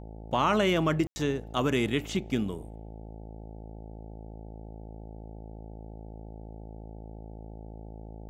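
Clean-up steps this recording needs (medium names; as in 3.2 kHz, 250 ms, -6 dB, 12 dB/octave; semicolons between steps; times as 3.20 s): de-hum 54.4 Hz, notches 16; room tone fill 1.07–1.16 s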